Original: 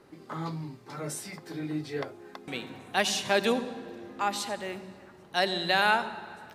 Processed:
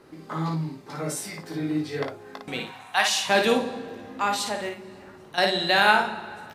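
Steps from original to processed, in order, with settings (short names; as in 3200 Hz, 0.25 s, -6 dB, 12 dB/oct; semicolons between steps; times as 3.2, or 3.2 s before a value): 2.65–3.29 resonant low shelf 600 Hz -12.5 dB, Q 1.5; 4.68–5.38 compressor, threshold -41 dBFS, peak gain reduction 12 dB; on a send: early reflections 19 ms -8 dB, 56 ms -5 dB; on the sum: gain +3.5 dB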